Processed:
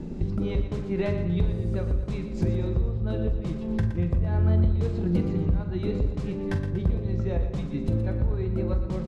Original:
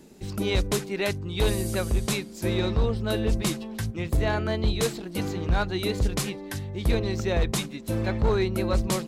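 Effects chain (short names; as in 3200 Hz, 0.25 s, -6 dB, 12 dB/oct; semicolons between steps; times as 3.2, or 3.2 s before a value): LPF 6800 Hz 12 dB/oct; tilt -4 dB/oct; compressor 8:1, threshold -30 dBFS, peak gain reduction 26.5 dB; doubler 46 ms -12 dB; split-band echo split 400 Hz, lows 0.196 s, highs 0.119 s, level -10 dB; on a send at -8 dB: reverb RT60 1.2 s, pre-delay 3 ms; on the sum: gain +6 dB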